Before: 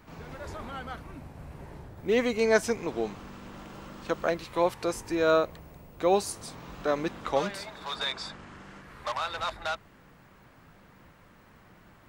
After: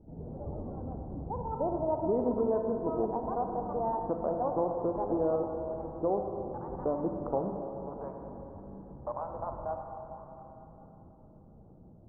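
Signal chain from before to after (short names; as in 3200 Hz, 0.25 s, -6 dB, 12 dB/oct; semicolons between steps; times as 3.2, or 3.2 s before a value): Wiener smoothing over 41 samples; echoes that change speed 0.129 s, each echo +6 st, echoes 2, each echo -6 dB; compressor 5:1, threshold -28 dBFS, peak gain reduction 10.5 dB; steep low-pass 970 Hz 36 dB/oct; on a send: reverb RT60 3.8 s, pre-delay 27 ms, DRR 3 dB; on the sum: gain +1.5 dB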